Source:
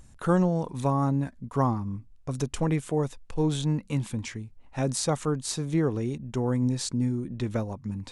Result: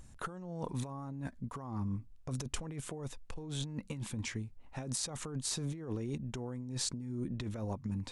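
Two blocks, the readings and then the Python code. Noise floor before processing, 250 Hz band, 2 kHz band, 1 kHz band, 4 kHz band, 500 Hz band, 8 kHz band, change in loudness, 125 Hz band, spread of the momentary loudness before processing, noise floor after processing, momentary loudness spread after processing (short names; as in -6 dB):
-53 dBFS, -12.5 dB, -7.5 dB, -14.5 dB, -4.5 dB, -15.5 dB, -4.5 dB, -11.5 dB, -11.5 dB, 9 LU, -55 dBFS, 7 LU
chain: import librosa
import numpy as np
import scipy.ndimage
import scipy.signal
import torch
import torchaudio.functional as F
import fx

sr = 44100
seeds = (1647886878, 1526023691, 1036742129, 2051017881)

y = fx.over_compress(x, sr, threshold_db=-32.0, ratio=-1.0)
y = y * librosa.db_to_amplitude(-7.0)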